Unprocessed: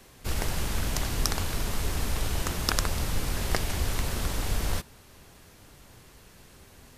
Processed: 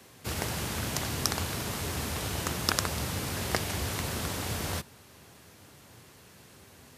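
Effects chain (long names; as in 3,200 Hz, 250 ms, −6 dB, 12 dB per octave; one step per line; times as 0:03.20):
high-pass filter 80 Hz 24 dB per octave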